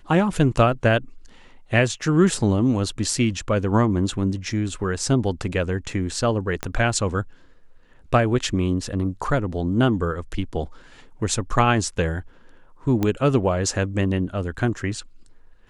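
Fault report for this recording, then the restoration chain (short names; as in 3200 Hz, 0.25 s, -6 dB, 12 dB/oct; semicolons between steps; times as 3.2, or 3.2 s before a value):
6.63 pop -11 dBFS
13.03 pop -10 dBFS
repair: de-click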